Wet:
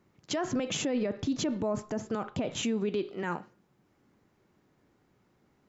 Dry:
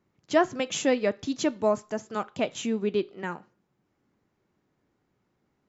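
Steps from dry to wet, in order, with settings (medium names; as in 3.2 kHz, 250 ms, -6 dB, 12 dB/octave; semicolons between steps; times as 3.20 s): 0.53–2.63 s: tilt EQ -2 dB/octave; peak limiter -28 dBFS, peak gain reduction 20 dB; trim +5.5 dB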